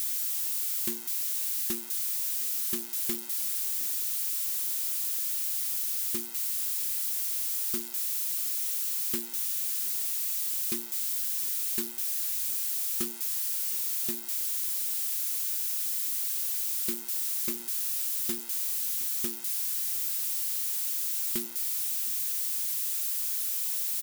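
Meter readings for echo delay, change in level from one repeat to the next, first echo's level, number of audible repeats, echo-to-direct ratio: 712 ms, -9.5 dB, -23.0 dB, 2, -22.5 dB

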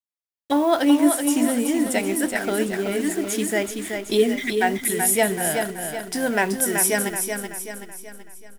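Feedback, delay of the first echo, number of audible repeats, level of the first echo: 46%, 379 ms, 5, -6.0 dB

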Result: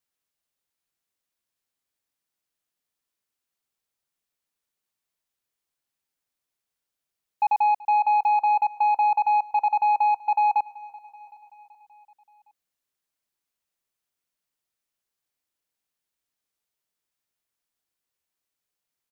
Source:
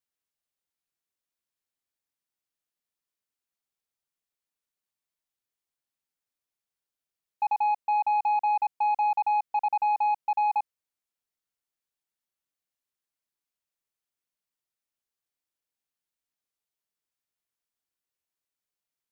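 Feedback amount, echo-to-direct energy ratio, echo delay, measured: 60%, -18.5 dB, 381 ms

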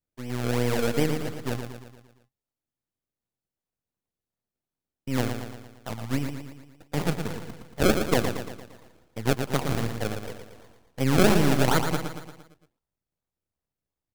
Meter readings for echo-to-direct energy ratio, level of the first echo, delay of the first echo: -5.5 dB, -7.0 dB, 115 ms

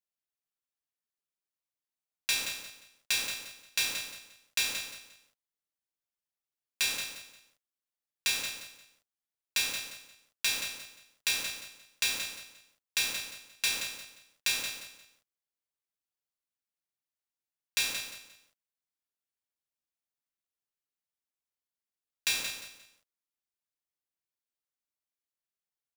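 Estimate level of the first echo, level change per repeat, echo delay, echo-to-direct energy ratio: -8.5 dB, -11.0 dB, 176 ms, -8.0 dB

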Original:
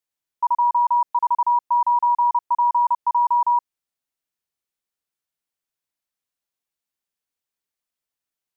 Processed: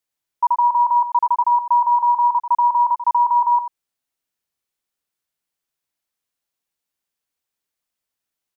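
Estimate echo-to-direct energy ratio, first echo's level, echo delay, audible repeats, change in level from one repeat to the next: -12.5 dB, -12.5 dB, 90 ms, 1, no regular repeats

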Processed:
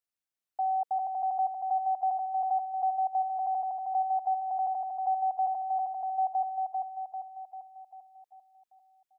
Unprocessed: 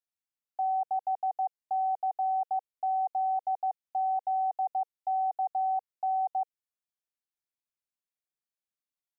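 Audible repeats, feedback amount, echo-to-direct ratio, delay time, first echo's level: 6, 54%, -2.0 dB, 394 ms, -3.5 dB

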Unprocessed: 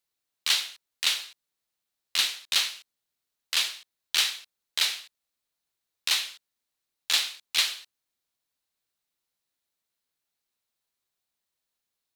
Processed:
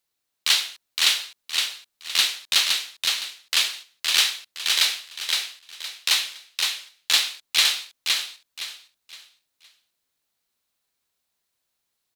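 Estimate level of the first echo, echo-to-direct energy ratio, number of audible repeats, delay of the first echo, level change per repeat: -3.5 dB, -3.0 dB, 4, 515 ms, -10.5 dB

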